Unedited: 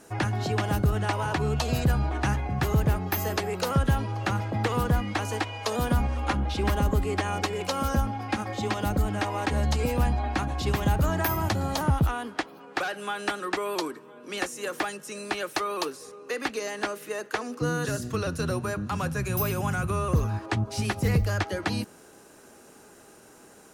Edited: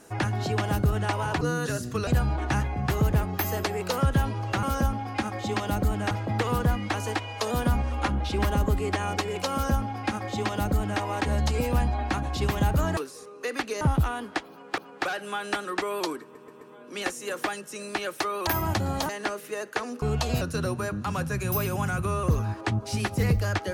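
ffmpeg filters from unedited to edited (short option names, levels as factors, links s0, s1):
-filter_complex "[0:a]asplit=15[s0][s1][s2][s3][s4][s5][s6][s7][s8][s9][s10][s11][s12][s13][s14];[s0]atrim=end=1.412[s15];[s1]atrim=start=17.598:end=18.262[s16];[s2]atrim=start=1.798:end=4.362[s17];[s3]atrim=start=7.768:end=9.252[s18];[s4]atrim=start=4.358:end=11.222[s19];[s5]atrim=start=15.828:end=16.672[s20];[s6]atrim=start=11.838:end=12.812[s21];[s7]atrim=start=12.528:end=14.102[s22];[s8]atrim=start=13.968:end=14.102[s23];[s9]atrim=start=13.968:end=14.102[s24];[s10]atrim=start=13.968:end=15.832[s25];[s11]atrim=start=11.218:end=11.842[s26];[s12]atrim=start=16.668:end=17.602[s27];[s13]atrim=start=1.408:end=1.802[s28];[s14]atrim=start=18.258[s29];[s15][s16]acrossfade=d=0.004:c1=hsin:c2=hsin[s30];[s30][s17]acrossfade=d=0.004:c1=hsin:c2=hsin[s31];[s31][s18]acrossfade=d=0.004:c1=hsin:c2=hsin[s32];[s32][s19]acrossfade=d=0.004:c1=hsin:c2=hsin[s33];[s33][s20]acrossfade=d=0.004:c1=hsin:c2=hsin[s34];[s34][s21]acrossfade=d=0.004:c1=hsin:c2=hsin[s35];[s35][s22]acrossfade=d=0.004:c1=hsin:c2=hsin[s36];[s36][s23]acrossfade=d=0.004:c1=hsin:c2=hsin[s37];[s37][s24]acrossfade=d=0.004:c1=hsin:c2=hsin[s38];[s38][s25]acrossfade=d=0.004:c1=hsin:c2=hsin[s39];[s39][s26]acrossfade=d=0.004:c1=hsin:c2=hsin[s40];[s40][s27]acrossfade=d=0.004:c1=hsin:c2=hsin[s41];[s41][s28]acrossfade=d=0.004:c1=hsin:c2=hsin[s42];[s42][s29]acrossfade=d=0.004:c1=hsin:c2=hsin"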